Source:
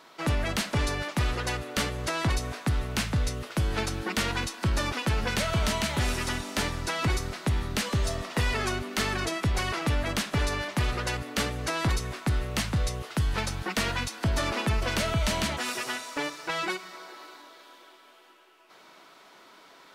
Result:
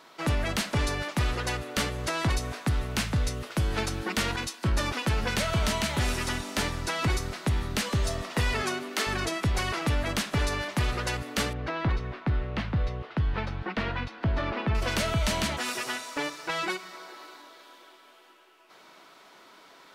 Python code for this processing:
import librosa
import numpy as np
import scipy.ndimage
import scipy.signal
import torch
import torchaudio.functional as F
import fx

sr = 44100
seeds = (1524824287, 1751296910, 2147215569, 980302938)

y = fx.band_widen(x, sr, depth_pct=100, at=(4.36, 4.8))
y = fx.highpass(y, sr, hz=fx.line((8.61, 130.0), (9.06, 310.0)), slope=24, at=(8.61, 9.06), fade=0.02)
y = fx.air_absorb(y, sr, metres=330.0, at=(11.53, 14.75))